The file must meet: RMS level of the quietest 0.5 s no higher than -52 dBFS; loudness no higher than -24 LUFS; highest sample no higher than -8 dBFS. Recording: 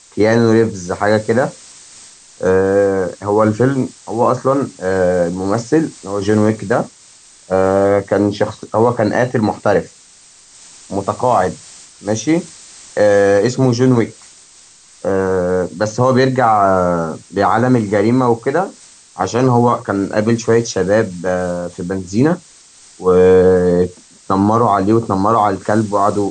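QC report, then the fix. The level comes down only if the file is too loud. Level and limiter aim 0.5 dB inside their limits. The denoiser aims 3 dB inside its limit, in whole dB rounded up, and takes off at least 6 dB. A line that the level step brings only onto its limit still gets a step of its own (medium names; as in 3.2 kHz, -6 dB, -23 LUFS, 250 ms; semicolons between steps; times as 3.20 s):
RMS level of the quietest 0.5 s -45 dBFS: fail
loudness -15.0 LUFS: fail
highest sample -1.5 dBFS: fail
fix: trim -9.5 dB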